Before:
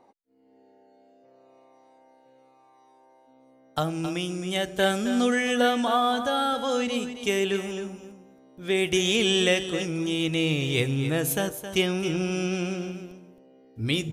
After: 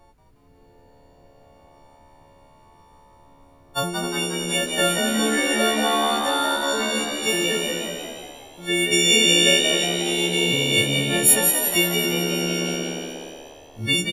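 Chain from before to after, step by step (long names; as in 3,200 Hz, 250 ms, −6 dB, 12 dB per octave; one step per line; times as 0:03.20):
every partial snapped to a pitch grid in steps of 4 semitones
background noise brown −57 dBFS
echo with shifted repeats 180 ms, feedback 58%, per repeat +74 Hz, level −5 dB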